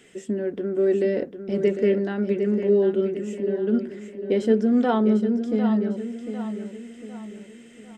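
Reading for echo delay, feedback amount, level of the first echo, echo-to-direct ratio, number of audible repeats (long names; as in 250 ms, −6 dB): 751 ms, 43%, −9.0 dB, −8.0 dB, 4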